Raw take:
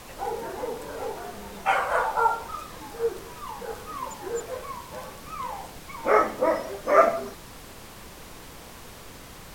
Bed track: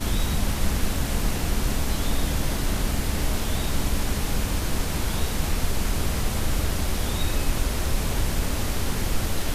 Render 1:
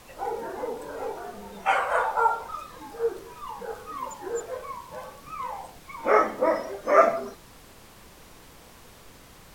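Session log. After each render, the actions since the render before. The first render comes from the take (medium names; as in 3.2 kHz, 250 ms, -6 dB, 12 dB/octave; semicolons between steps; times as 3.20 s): noise print and reduce 6 dB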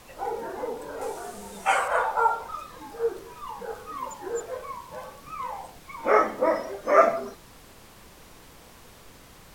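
1.01–1.88 s: peaking EQ 8.6 kHz +12 dB 1.2 oct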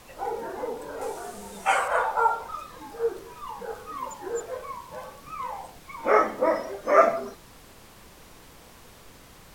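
no audible change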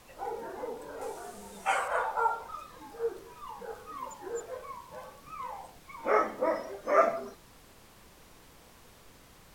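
trim -6 dB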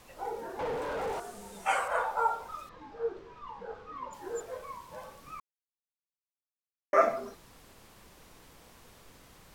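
0.59–1.20 s: overdrive pedal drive 31 dB, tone 1.3 kHz, clips at -26.5 dBFS; 2.69–4.13 s: distance through air 190 m; 5.40–6.93 s: mute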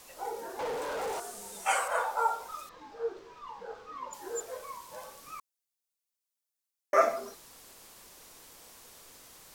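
tone controls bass -9 dB, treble +9 dB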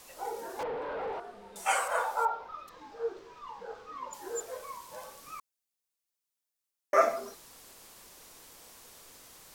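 0.63–1.56 s: distance through air 380 m; 2.25–2.68 s: distance through air 280 m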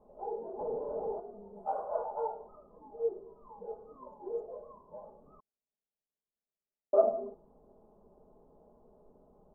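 inverse Chebyshev low-pass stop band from 1.9 kHz, stop band 50 dB; comb 4.8 ms, depth 56%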